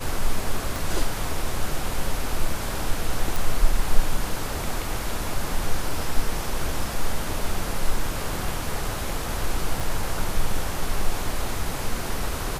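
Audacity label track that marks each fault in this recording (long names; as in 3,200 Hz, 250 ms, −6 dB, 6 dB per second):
0.760000	0.760000	click
3.360000	3.360000	click
9.800000	9.800000	drop-out 4.5 ms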